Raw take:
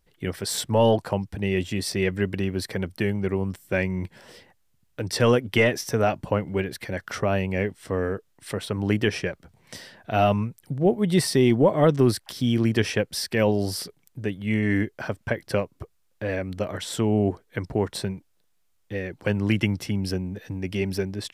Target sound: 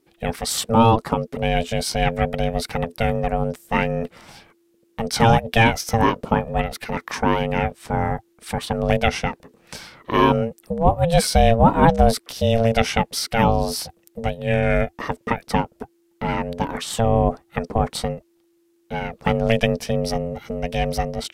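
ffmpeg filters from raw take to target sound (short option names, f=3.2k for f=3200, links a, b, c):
-af "aeval=exprs='val(0)*sin(2*PI*340*n/s)':c=same,volume=7dB"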